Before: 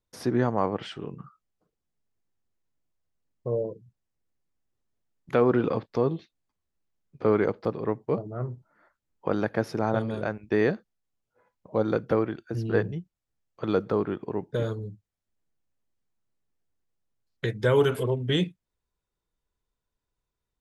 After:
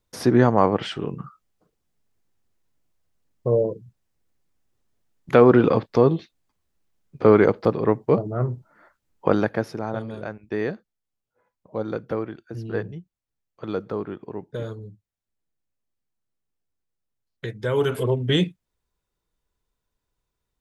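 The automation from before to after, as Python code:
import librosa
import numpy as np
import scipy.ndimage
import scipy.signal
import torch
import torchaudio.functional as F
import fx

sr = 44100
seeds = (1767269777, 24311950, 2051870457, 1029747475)

y = fx.gain(x, sr, db=fx.line((9.29, 8.0), (9.82, -3.0), (17.67, -3.0), (18.09, 4.5)))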